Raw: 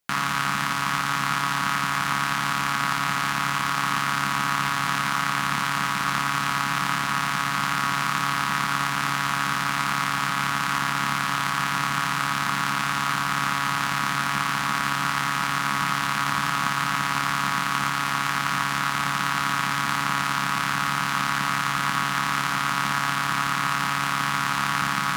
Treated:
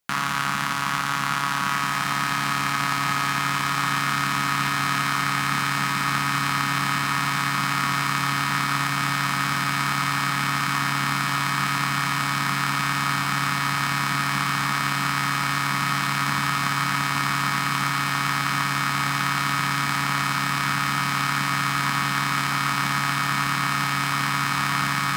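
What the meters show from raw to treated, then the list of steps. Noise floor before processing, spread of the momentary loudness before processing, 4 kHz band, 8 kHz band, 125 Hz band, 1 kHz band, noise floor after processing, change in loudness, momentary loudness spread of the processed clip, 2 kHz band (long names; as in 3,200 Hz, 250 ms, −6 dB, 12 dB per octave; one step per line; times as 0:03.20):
−26 dBFS, 0 LU, +1.5 dB, +1.0 dB, +4.5 dB, 0.0 dB, −25 dBFS, +1.0 dB, 1 LU, +1.0 dB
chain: feedback delay with all-pass diffusion 1,711 ms, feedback 60%, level −5.5 dB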